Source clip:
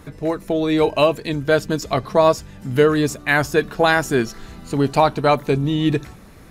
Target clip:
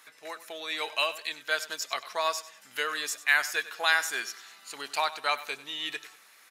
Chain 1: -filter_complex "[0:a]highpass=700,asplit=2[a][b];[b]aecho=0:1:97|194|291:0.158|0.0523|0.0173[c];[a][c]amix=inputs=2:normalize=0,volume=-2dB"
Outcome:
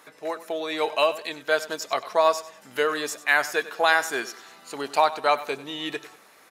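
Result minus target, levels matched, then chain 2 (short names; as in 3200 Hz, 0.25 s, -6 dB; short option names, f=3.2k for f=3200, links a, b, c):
500 Hz band +8.0 dB
-filter_complex "[0:a]highpass=1.6k,asplit=2[a][b];[b]aecho=0:1:97|194|291:0.158|0.0523|0.0173[c];[a][c]amix=inputs=2:normalize=0,volume=-2dB"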